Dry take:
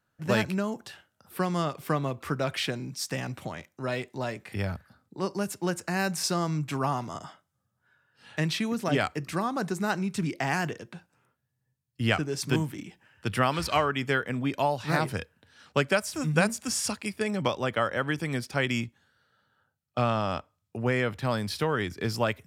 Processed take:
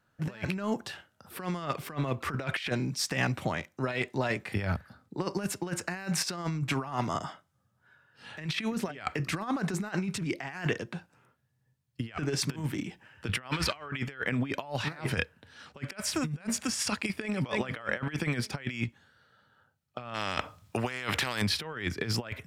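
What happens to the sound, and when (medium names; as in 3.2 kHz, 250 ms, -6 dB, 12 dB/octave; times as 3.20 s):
17.00–17.44 s: echo throw 300 ms, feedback 40%, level -9.5 dB
20.14–21.42 s: spectrum-flattening compressor 2:1
whole clip: dynamic bell 2.1 kHz, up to +7 dB, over -42 dBFS, Q 0.8; compressor with a negative ratio -31 dBFS, ratio -0.5; treble shelf 7 kHz -6.5 dB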